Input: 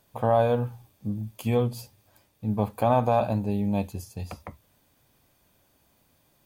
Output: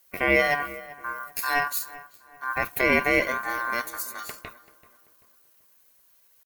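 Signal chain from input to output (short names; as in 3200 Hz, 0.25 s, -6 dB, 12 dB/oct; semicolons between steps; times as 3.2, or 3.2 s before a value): bin magnitudes rounded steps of 15 dB; RIAA curve recording; gate -46 dBFS, range -7 dB; low shelf 150 Hz +9 dB; pitch shift +3 st; ring modulator 1300 Hz; darkening echo 0.386 s, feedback 41%, low-pass 2100 Hz, level -17 dB; gain +5 dB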